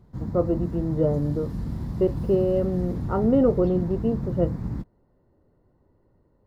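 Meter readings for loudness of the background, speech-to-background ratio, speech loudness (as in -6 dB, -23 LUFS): -31.5 LUFS, 6.5 dB, -25.0 LUFS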